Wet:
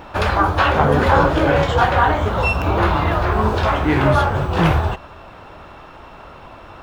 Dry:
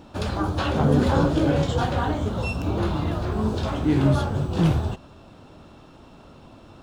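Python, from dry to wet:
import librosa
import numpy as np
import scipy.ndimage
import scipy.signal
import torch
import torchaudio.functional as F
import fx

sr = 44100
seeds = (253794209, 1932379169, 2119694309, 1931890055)

p1 = fx.graphic_eq_10(x, sr, hz=(125, 250, 1000, 2000, 4000, 8000), db=(-6, -9, 4, 7, -4, -8))
p2 = fx.rider(p1, sr, range_db=10, speed_s=0.5)
p3 = p1 + (p2 * librosa.db_to_amplitude(-2.0))
y = p3 * librosa.db_to_amplitude(4.0)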